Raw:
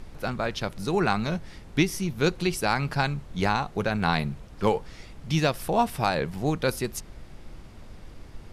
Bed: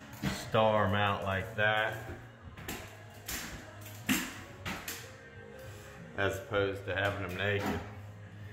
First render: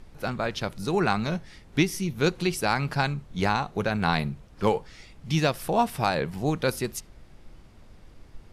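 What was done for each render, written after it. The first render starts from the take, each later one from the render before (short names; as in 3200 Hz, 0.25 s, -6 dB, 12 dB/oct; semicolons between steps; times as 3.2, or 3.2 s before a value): noise print and reduce 6 dB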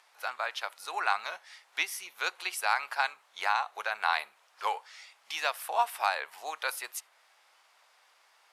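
HPF 800 Hz 24 dB/oct; dynamic EQ 5400 Hz, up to -6 dB, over -48 dBFS, Q 1.1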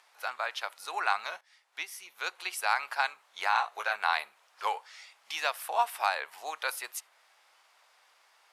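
1.41–2.71 fade in, from -14.5 dB; 3.51–3.96 doubler 17 ms -3.5 dB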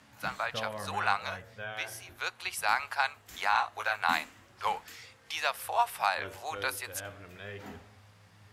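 add bed -11.5 dB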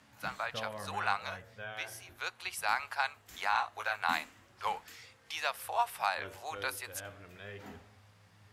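gain -3.5 dB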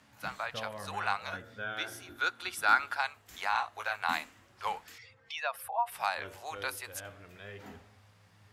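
1.33–2.97 small resonant body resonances 290/1400/3500 Hz, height 14 dB, ringing for 25 ms; 4.98–5.92 spectral contrast raised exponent 1.8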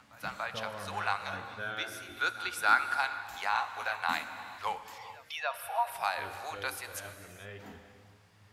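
reverse echo 0.288 s -21 dB; non-linear reverb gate 0.48 s flat, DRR 9.5 dB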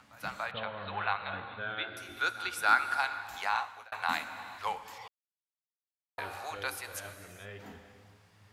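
0.51–1.97 steep low-pass 4100 Hz 96 dB/oct; 3.52–3.92 fade out; 5.08–6.18 mute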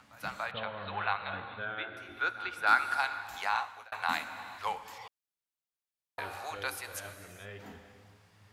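1.65–2.67 tone controls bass -2 dB, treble -15 dB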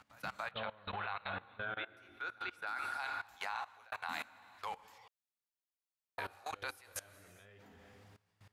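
level quantiser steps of 20 dB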